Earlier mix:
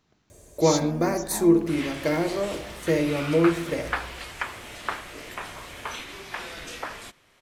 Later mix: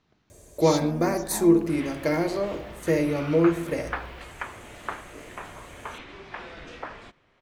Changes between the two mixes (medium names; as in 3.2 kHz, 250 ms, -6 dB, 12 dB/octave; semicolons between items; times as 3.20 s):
speech: add low-pass 4.8 kHz; second sound: add tape spacing loss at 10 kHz 25 dB